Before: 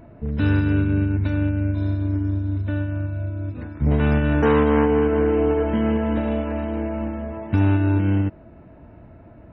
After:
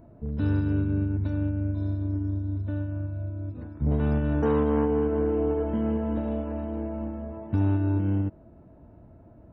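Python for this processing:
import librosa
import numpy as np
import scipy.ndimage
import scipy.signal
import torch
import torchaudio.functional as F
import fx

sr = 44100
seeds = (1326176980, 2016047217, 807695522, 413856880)

y = fx.peak_eq(x, sr, hz=2300.0, db=-12.0, octaves=1.5)
y = y * 10.0 ** (-5.5 / 20.0)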